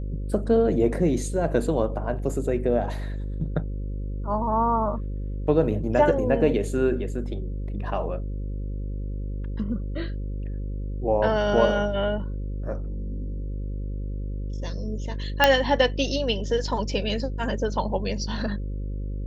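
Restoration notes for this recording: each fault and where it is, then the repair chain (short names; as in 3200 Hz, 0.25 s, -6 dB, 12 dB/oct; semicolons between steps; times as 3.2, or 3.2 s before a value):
buzz 50 Hz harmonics 11 -30 dBFS
15.44 pop -2 dBFS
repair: de-click; de-hum 50 Hz, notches 11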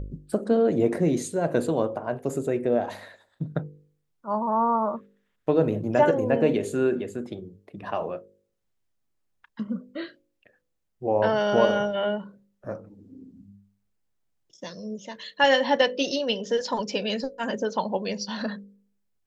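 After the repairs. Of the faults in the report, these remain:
none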